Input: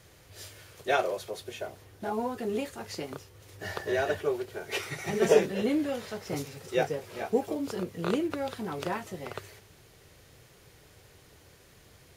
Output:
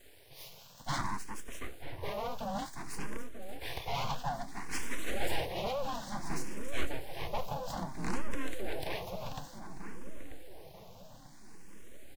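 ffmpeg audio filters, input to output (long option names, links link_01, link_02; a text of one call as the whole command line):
ffmpeg -i in.wav -filter_complex "[0:a]afreqshift=-27,aeval=exprs='abs(val(0))':channel_layout=same,bandreject=frequency=1300:width=7.1,asoftclip=type=tanh:threshold=-23dB,asplit=2[link_01][link_02];[link_02]adelay=939,lowpass=frequency=1200:poles=1,volume=-8dB,asplit=2[link_03][link_04];[link_04]adelay=939,lowpass=frequency=1200:poles=1,volume=0.54,asplit=2[link_05][link_06];[link_06]adelay=939,lowpass=frequency=1200:poles=1,volume=0.54,asplit=2[link_07][link_08];[link_08]adelay=939,lowpass=frequency=1200:poles=1,volume=0.54,asplit=2[link_09][link_10];[link_10]adelay=939,lowpass=frequency=1200:poles=1,volume=0.54,asplit=2[link_11][link_12];[link_12]adelay=939,lowpass=frequency=1200:poles=1,volume=0.54[link_13];[link_03][link_05][link_07][link_09][link_11][link_13]amix=inputs=6:normalize=0[link_14];[link_01][link_14]amix=inputs=2:normalize=0,asplit=2[link_15][link_16];[link_16]afreqshift=0.58[link_17];[link_15][link_17]amix=inputs=2:normalize=1,volume=3dB" out.wav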